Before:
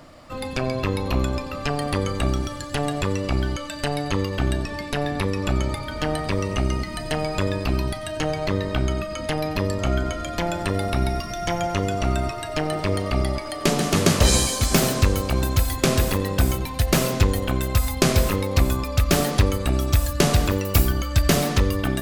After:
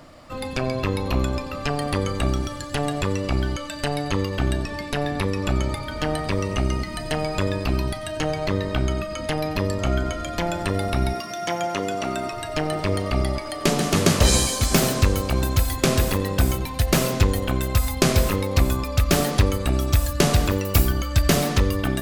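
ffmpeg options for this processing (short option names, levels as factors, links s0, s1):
-filter_complex "[0:a]asettb=1/sr,asplit=3[s0][s1][s2];[s0]atrim=end=11.134[s3];[s1]atrim=start=11.13:end=12.33,asetpts=PTS-STARTPTS,afade=t=in:d=0.004:c=qsin,afade=t=out:st=1.196:d=0.004:c=qsin,highpass=220[s4];[s2]atrim=start=12.326[s5];[s3][s4]acrossfade=d=0.004:c1=hsin:c2=qsin[s6];[s6][s5]acrossfade=d=0.004:c1=qsin:c2=hsin"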